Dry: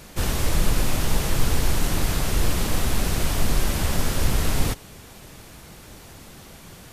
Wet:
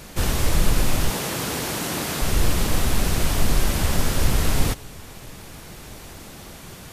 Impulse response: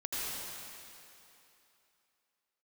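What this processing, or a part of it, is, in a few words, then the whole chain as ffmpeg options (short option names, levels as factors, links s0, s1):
ducked reverb: -filter_complex "[0:a]asplit=3[s0][s1][s2];[1:a]atrim=start_sample=2205[s3];[s1][s3]afir=irnorm=-1:irlink=0[s4];[s2]apad=whole_len=305502[s5];[s4][s5]sidechaincompress=threshold=0.0224:ratio=8:attack=16:release=840,volume=0.316[s6];[s0][s6]amix=inputs=2:normalize=0,asettb=1/sr,asplit=3[s7][s8][s9];[s7]atrim=end=1.104[s10];[s8]atrim=start=1.1:end=2.22,asetpts=PTS-STARTPTS,afade=t=in:d=0.004:c=qsin,afade=t=out:st=1.116:d=0.004:c=qsin,highpass=180[s11];[s9]atrim=start=2.216[s12];[s10][s11]acrossfade=d=0.004:c1=hsin:c2=qsin[s13];[s13][s12]acrossfade=d=0.004:c1=qsin:c2=hsin,volume=1.19"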